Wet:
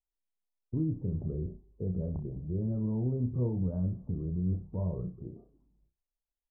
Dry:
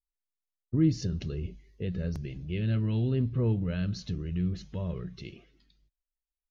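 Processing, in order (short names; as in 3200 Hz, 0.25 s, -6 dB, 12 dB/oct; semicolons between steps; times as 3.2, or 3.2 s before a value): steep low-pass 1000 Hz 48 dB/oct; limiter -24.5 dBFS, peak gain reduction 10.5 dB; flutter echo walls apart 5.5 m, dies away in 0.25 s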